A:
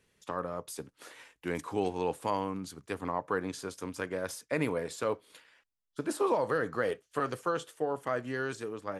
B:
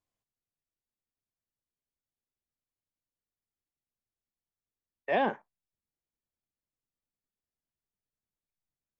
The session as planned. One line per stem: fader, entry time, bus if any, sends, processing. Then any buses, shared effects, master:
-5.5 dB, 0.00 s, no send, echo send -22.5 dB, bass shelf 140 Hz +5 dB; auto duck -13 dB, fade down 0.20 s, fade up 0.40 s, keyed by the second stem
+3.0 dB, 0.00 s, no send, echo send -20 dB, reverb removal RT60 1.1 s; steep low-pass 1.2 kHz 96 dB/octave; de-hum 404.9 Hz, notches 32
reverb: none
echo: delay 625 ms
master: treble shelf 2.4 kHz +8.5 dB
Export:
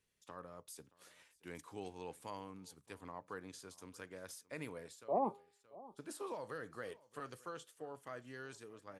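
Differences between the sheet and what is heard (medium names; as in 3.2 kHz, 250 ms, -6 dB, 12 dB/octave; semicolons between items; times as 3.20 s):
stem A -5.5 dB -> -17.0 dB; stem B +3.0 dB -> -6.5 dB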